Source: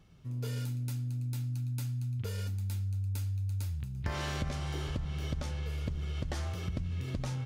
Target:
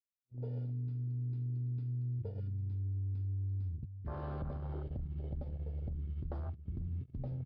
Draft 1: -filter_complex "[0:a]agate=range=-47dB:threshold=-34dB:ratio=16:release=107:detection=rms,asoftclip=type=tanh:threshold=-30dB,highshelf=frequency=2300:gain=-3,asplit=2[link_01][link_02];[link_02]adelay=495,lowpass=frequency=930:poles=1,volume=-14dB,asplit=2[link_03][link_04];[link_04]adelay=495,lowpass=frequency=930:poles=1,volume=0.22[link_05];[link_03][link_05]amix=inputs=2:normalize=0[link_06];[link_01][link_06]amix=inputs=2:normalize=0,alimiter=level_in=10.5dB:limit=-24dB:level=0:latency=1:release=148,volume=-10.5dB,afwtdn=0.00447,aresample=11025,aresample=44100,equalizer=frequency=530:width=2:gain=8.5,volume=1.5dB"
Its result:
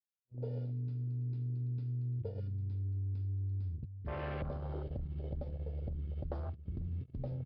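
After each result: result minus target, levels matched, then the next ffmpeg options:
2,000 Hz band +8.5 dB; 500 Hz band +4.5 dB
-filter_complex "[0:a]agate=range=-47dB:threshold=-34dB:ratio=16:release=107:detection=rms,asoftclip=type=tanh:threshold=-30dB,highshelf=frequency=2300:gain=-10,asplit=2[link_01][link_02];[link_02]adelay=495,lowpass=frequency=930:poles=1,volume=-14dB,asplit=2[link_03][link_04];[link_04]adelay=495,lowpass=frequency=930:poles=1,volume=0.22[link_05];[link_03][link_05]amix=inputs=2:normalize=0[link_06];[link_01][link_06]amix=inputs=2:normalize=0,alimiter=level_in=10.5dB:limit=-24dB:level=0:latency=1:release=148,volume=-10.5dB,afwtdn=0.00447,aresample=11025,aresample=44100,equalizer=frequency=530:width=2:gain=8.5,volume=1.5dB"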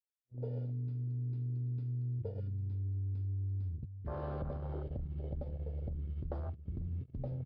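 500 Hz band +4.0 dB
-filter_complex "[0:a]agate=range=-47dB:threshold=-34dB:ratio=16:release=107:detection=rms,asoftclip=type=tanh:threshold=-30dB,highshelf=frequency=2300:gain=-10,asplit=2[link_01][link_02];[link_02]adelay=495,lowpass=frequency=930:poles=1,volume=-14dB,asplit=2[link_03][link_04];[link_04]adelay=495,lowpass=frequency=930:poles=1,volume=0.22[link_05];[link_03][link_05]amix=inputs=2:normalize=0[link_06];[link_01][link_06]amix=inputs=2:normalize=0,alimiter=level_in=10.5dB:limit=-24dB:level=0:latency=1:release=148,volume=-10.5dB,afwtdn=0.00447,aresample=11025,aresample=44100,equalizer=frequency=530:width=2:gain=2.5,volume=1.5dB"

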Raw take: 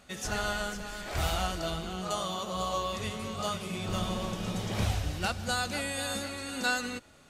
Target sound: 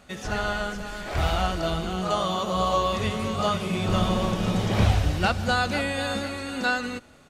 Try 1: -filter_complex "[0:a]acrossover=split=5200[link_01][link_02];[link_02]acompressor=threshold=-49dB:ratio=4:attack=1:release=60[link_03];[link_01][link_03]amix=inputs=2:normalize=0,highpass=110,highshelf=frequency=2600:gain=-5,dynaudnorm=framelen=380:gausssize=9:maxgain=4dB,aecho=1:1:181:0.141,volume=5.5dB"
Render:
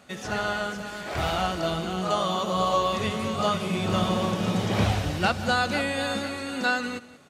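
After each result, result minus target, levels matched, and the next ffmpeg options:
echo-to-direct +11 dB; 125 Hz band −2.5 dB
-filter_complex "[0:a]acrossover=split=5200[link_01][link_02];[link_02]acompressor=threshold=-49dB:ratio=4:attack=1:release=60[link_03];[link_01][link_03]amix=inputs=2:normalize=0,highpass=110,highshelf=frequency=2600:gain=-5,dynaudnorm=framelen=380:gausssize=9:maxgain=4dB,aecho=1:1:181:0.0398,volume=5.5dB"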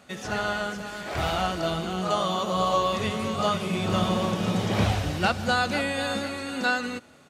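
125 Hz band −2.5 dB
-filter_complex "[0:a]acrossover=split=5200[link_01][link_02];[link_02]acompressor=threshold=-49dB:ratio=4:attack=1:release=60[link_03];[link_01][link_03]amix=inputs=2:normalize=0,highshelf=frequency=2600:gain=-5,dynaudnorm=framelen=380:gausssize=9:maxgain=4dB,aecho=1:1:181:0.0398,volume=5.5dB"

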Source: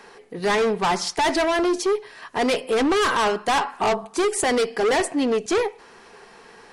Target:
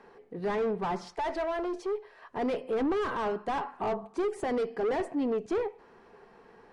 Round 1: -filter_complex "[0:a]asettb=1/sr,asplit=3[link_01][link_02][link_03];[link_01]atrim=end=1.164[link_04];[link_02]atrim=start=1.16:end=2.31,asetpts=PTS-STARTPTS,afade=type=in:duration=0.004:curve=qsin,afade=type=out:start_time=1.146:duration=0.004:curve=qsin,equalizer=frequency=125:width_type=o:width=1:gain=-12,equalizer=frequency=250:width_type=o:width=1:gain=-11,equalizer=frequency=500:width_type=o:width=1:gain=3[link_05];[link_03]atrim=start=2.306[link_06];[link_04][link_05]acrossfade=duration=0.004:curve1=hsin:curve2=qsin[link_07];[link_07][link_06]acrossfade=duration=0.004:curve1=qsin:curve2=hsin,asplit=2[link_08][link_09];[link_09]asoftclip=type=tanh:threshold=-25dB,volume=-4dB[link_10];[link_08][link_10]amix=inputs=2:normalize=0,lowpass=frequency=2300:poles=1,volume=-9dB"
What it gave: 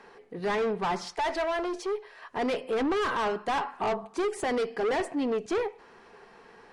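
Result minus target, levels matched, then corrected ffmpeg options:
2,000 Hz band +4.0 dB
-filter_complex "[0:a]asettb=1/sr,asplit=3[link_01][link_02][link_03];[link_01]atrim=end=1.164[link_04];[link_02]atrim=start=1.16:end=2.31,asetpts=PTS-STARTPTS,afade=type=in:duration=0.004:curve=qsin,afade=type=out:start_time=1.146:duration=0.004:curve=qsin,equalizer=frequency=125:width_type=o:width=1:gain=-12,equalizer=frequency=250:width_type=o:width=1:gain=-11,equalizer=frequency=500:width_type=o:width=1:gain=3[link_05];[link_03]atrim=start=2.306[link_06];[link_04][link_05]acrossfade=duration=0.004:curve1=hsin:curve2=qsin[link_07];[link_07][link_06]acrossfade=duration=0.004:curve1=qsin:curve2=hsin,asplit=2[link_08][link_09];[link_09]asoftclip=type=tanh:threshold=-25dB,volume=-4dB[link_10];[link_08][link_10]amix=inputs=2:normalize=0,lowpass=frequency=750:poles=1,volume=-9dB"

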